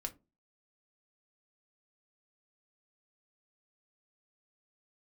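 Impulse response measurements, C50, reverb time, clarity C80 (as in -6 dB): 19.0 dB, 0.25 s, 27.0 dB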